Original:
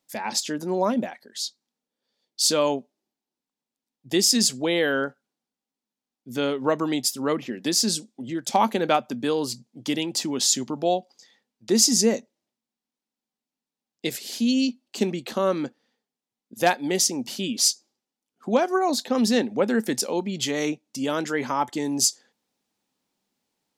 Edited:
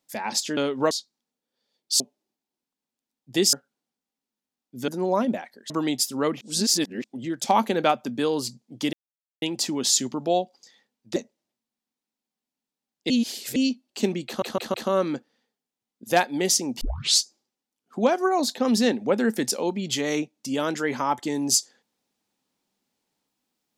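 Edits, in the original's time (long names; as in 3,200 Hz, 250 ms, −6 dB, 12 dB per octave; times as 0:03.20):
0:00.57–0:01.39: swap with 0:06.41–0:06.75
0:02.48–0:02.77: remove
0:04.30–0:05.06: remove
0:07.46–0:08.09: reverse
0:09.98: splice in silence 0.49 s
0:11.72–0:12.14: remove
0:14.08–0:14.54: reverse
0:15.24: stutter 0.16 s, 4 plays
0:17.31: tape start 0.40 s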